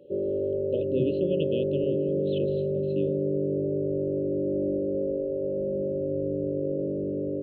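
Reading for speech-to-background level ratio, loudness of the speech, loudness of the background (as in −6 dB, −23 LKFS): −4.5 dB, −33.0 LKFS, −28.5 LKFS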